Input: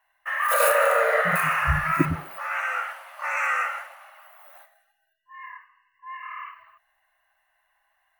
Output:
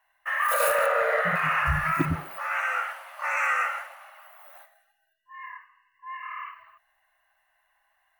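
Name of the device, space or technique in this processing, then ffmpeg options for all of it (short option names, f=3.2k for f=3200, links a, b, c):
clipper into limiter: -filter_complex "[0:a]asoftclip=type=hard:threshold=-11.5dB,alimiter=limit=-15dB:level=0:latency=1:release=100,asettb=1/sr,asplit=3[a][b][c];[a]atrim=end=0.864[d];[b]atrim=start=0.86:end=1.66,asetpts=PTS-STARTPTS,afade=t=in:d=0.004:c=qsin,afade=t=out:st=0.796:d=0.004:c=qsin,acrossover=split=4900[e][f];[f]acompressor=threshold=-52dB:ratio=4:attack=1:release=60[g];[e][g]amix=inputs=2:normalize=0[h];[c]atrim=start=1.656[i];[d][h]acrossfade=d=0.004:c1=hsin:c2=qsin[j];[j][i]acrossfade=d=0.004:c1=qsin:c2=hsin"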